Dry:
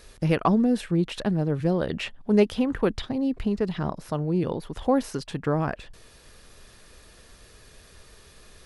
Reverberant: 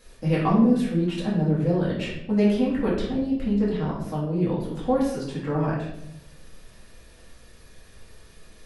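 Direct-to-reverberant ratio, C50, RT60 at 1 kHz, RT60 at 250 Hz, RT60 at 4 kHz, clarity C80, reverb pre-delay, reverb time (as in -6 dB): -7.5 dB, 3.0 dB, 0.70 s, 1.1 s, 0.55 s, 6.0 dB, 4 ms, 0.85 s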